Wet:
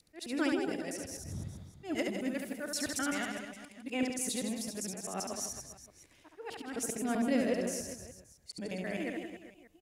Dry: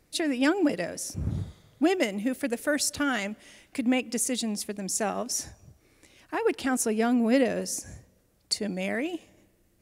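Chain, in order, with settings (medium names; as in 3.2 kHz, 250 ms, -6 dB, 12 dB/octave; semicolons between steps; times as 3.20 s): time reversed locally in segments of 130 ms; slow attack 186 ms; reverse bouncing-ball echo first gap 70 ms, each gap 1.25×, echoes 5; trim -8.5 dB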